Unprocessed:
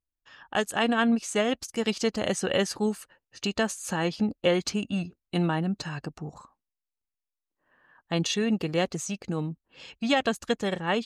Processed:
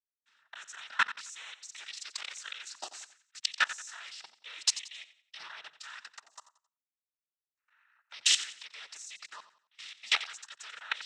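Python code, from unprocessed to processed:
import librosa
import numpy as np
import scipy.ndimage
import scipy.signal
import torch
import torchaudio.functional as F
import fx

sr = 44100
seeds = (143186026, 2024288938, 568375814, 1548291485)

y = scipy.signal.sosfilt(scipy.signal.cheby1(3, 1.0, 1300.0, 'highpass', fs=sr, output='sos'), x)
y = fx.high_shelf(y, sr, hz=2000.0, db=6.5)
y = fx.leveller(y, sr, passes=1)
y = fx.rider(y, sr, range_db=4, speed_s=2.0)
y = fx.noise_vocoder(y, sr, seeds[0], bands=12)
y = fx.level_steps(y, sr, step_db=23)
y = fx.transient(y, sr, attack_db=12, sustain_db=-6, at=(1.86, 2.87), fade=0.02)
y = fx.echo_feedback(y, sr, ms=89, feedback_pct=35, wet_db=-14.0)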